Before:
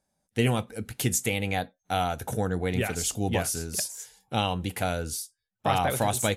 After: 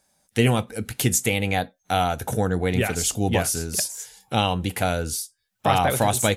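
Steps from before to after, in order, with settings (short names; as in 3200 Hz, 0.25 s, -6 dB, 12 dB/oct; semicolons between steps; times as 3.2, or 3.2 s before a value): mismatched tape noise reduction encoder only; gain +5 dB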